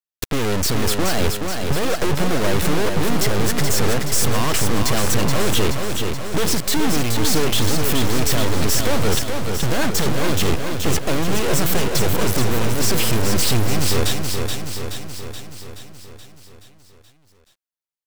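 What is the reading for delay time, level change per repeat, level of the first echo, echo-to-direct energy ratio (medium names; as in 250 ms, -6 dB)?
426 ms, -4.5 dB, -5.0 dB, -3.0 dB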